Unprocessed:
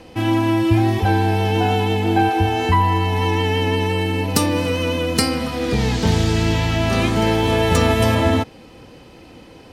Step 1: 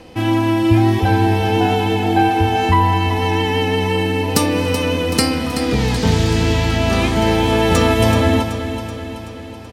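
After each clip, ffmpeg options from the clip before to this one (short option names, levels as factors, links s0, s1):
-af "aecho=1:1:379|758|1137|1516|1895|2274|2653:0.316|0.18|0.103|0.0586|0.0334|0.019|0.0108,volume=1.19"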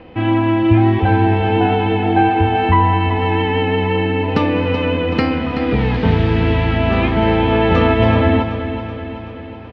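-af "lowpass=f=2900:w=0.5412,lowpass=f=2900:w=1.3066,volume=1.12"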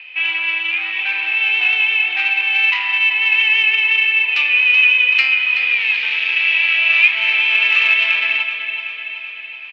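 -af "acontrast=89,highpass=f=2500:t=q:w=8.2,volume=0.562"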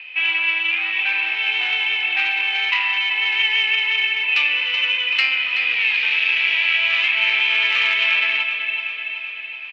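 -af "afftfilt=real='re*lt(hypot(re,im),1.41)':imag='im*lt(hypot(re,im),1.41)':win_size=1024:overlap=0.75"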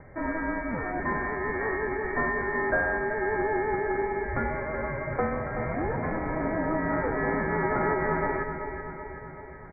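-af "equalizer=f=590:t=o:w=3:g=12.5,lowpass=f=2200:t=q:w=0.5098,lowpass=f=2200:t=q:w=0.6013,lowpass=f=2200:t=q:w=0.9,lowpass=f=2200:t=q:w=2.563,afreqshift=-2600,volume=0.422"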